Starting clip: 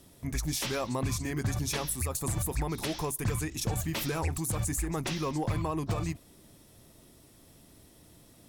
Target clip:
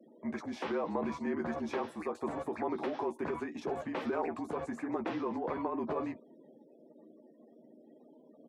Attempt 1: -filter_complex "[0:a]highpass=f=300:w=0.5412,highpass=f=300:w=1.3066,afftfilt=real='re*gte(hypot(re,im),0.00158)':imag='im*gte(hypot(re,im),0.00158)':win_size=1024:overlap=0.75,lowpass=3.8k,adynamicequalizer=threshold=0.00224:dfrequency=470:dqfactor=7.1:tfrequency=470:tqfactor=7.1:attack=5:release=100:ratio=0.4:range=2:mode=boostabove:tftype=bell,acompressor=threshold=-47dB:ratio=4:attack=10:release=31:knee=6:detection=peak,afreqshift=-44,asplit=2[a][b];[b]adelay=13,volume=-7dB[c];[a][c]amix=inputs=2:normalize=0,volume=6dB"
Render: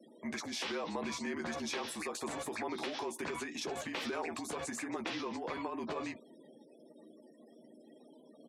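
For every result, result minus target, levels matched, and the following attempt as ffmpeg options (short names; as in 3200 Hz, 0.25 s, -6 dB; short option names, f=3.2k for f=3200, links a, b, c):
4000 Hz band +14.0 dB; compressor: peak gain reduction +5 dB
-filter_complex "[0:a]highpass=f=300:w=0.5412,highpass=f=300:w=1.3066,afftfilt=real='re*gte(hypot(re,im),0.00158)':imag='im*gte(hypot(re,im),0.00158)':win_size=1024:overlap=0.75,lowpass=1.2k,adynamicequalizer=threshold=0.00224:dfrequency=470:dqfactor=7.1:tfrequency=470:tqfactor=7.1:attack=5:release=100:ratio=0.4:range=2:mode=boostabove:tftype=bell,acompressor=threshold=-47dB:ratio=4:attack=10:release=31:knee=6:detection=peak,afreqshift=-44,asplit=2[a][b];[b]adelay=13,volume=-7dB[c];[a][c]amix=inputs=2:normalize=0,volume=6dB"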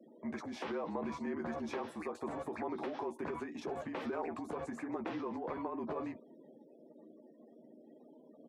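compressor: peak gain reduction +5 dB
-filter_complex "[0:a]highpass=f=300:w=0.5412,highpass=f=300:w=1.3066,afftfilt=real='re*gte(hypot(re,im),0.00158)':imag='im*gte(hypot(re,im),0.00158)':win_size=1024:overlap=0.75,lowpass=1.2k,adynamicequalizer=threshold=0.00224:dfrequency=470:dqfactor=7.1:tfrequency=470:tqfactor=7.1:attack=5:release=100:ratio=0.4:range=2:mode=boostabove:tftype=bell,acompressor=threshold=-40.5dB:ratio=4:attack=10:release=31:knee=6:detection=peak,afreqshift=-44,asplit=2[a][b];[b]adelay=13,volume=-7dB[c];[a][c]amix=inputs=2:normalize=0,volume=6dB"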